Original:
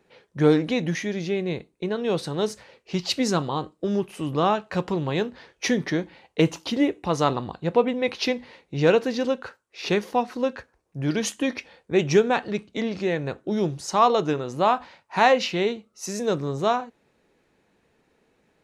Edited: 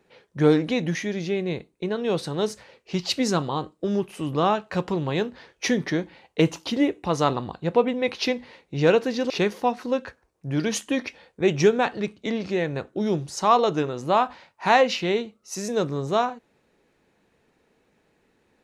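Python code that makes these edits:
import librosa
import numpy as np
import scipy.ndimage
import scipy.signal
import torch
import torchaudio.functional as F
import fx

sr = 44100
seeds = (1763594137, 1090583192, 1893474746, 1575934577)

y = fx.edit(x, sr, fx.cut(start_s=9.3, length_s=0.51), tone=tone)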